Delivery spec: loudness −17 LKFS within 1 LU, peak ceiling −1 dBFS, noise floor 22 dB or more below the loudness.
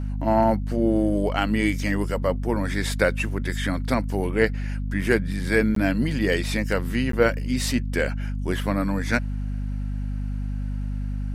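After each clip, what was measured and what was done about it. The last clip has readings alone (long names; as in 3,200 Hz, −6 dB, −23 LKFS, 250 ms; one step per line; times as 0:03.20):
number of dropouts 2; longest dropout 13 ms; mains hum 50 Hz; hum harmonics up to 250 Hz; level of the hum −25 dBFS; integrated loudness −24.5 LKFS; sample peak −4.0 dBFS; target loudness −17.0 LKFS
→ repair the gap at 0:05.75/0:07.12, 13 ms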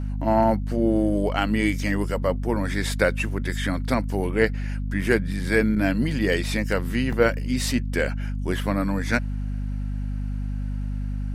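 number of dropouts 0; mains hum 50 Hz; hum harmonics up to 250 Hz; level of the hum −25 dBFS
→ hum removal 50 Hz, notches 5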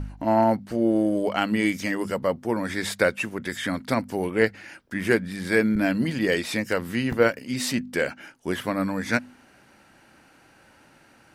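mains hum none found; integrated loudness −25.0 LKFS; sample peak −5.0 dBFS; target loudness −17.0 LKFS
→ level +8 dB
brickwall limiter −1 dBFS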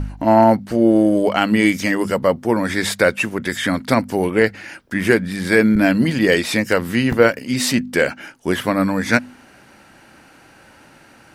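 integrated loudness −17.5 LKFS; sample peak −1.0 dBFS; background noise floor −48 dBFS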